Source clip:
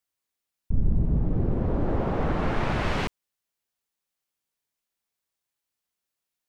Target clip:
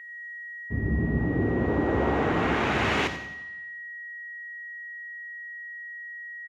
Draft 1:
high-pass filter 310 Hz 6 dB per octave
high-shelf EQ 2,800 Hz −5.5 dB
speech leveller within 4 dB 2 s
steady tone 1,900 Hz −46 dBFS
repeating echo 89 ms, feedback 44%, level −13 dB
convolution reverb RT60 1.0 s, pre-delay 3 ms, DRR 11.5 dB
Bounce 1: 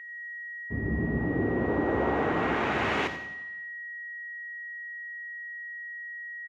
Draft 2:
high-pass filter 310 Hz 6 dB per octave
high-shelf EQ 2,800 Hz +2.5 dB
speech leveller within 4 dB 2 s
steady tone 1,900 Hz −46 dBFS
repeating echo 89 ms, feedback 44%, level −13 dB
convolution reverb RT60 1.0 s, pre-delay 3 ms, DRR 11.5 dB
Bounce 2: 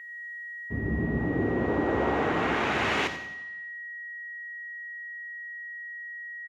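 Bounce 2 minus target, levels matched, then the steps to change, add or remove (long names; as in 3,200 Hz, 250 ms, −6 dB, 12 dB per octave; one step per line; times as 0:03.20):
125 Hz band −3.0 dB
change: high-pass filter 120 Hz 6 dB per octave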